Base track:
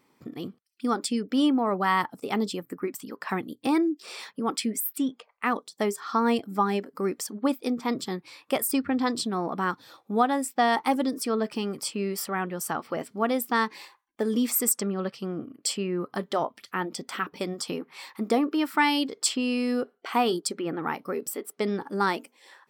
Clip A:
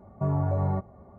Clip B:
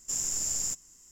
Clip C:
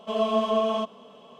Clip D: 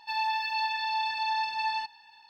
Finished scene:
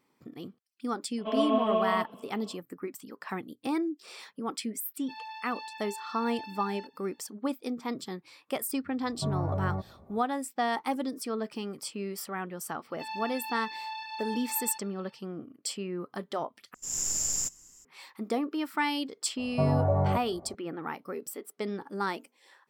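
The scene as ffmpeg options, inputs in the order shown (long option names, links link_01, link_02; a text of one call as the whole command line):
ffmpeg -i bed.wav -i cue0.wav -i cue1.wav -i cue2.wav -i cue3.wav -filter_complex "[4:a]asplit=2[link_01][link_02];[1:a]asplit=2[link_03][link_04];[0:a]volume=-6.5dB[link_05];[3:a]lowpass=frequency=3300:width=0.5412,lowpass=frequency=3300:width=1.3066[link_06];[2:a]dynaudnorm=framelen=120:gausssize=3:maxgain=9.5dB[link_07];[link_04]equalizer=frequency=650:width_type=o:width=0.93:gain=7[link_08];[link_05]asplit=2[link_09][link_10];[link_09]atrim=end=16.744[link_11];[link_07]atrim=end=1.11,asetpts=PTS-STARTPTS,volume=-8.5dB[link_12];[link_10]atrim=start=17.846[link_13];[link_06]atrim=end=1.39,asetpts=PTS-STARTPTS,volume=-3.5dB,afade=type=in:duration=0.004:curve=hsin,afade=type=out:start_time=1.386:duration=0.004:curve=hsin,adelay=1180[link_14];[link_01]atrim=end=2.29,asetpts=PTS-STARTPTS,volume=-13.5dB,afade=type=in:duration=0.004:curve=hsin,afade=type=out:start_time=2.286:duration=0.004:curve=hsin,adelay=220941S[link_15];[link_03]atrim=end=1.18,asetpts=PTS-STARTPTS,volume=-5dB,afade=type=in:duration=0.004:curve=hsin,afade=type=out:start_time=1.176:duration=0.004:curve=hsin,adelay=9010[link_16];[link_02]atrim=end=2.29,asetpts=PTS-STARTPTS,volume=-9dB,afade=type=in:duration=0.004:curve=hsin,afade=type=out:start_time=2.286:duration=0.004:curve=hsin,adelay=12920[link_17];[link_08]atrim=end=1.18,asetpts=PTS-STARTPTS,volume=-1dB,afade=type=in:duration=0.004:curve=hsin,afade=type=out:start_time=1.176:duration=0.004:curve=hsin,adelay=19370[link_18];[link_11][link_12]acrossfade=duration=0.004:curve1=hsin:curve2=hsin[link_19];[link_19][link_13]acrossfade=duration=0.004:curve1=hsin:curve2=hsin[link_20];[link_20][link_14][link_15][link_16][link_17][link_18]amix=inputs=6:normalize=0" out.wav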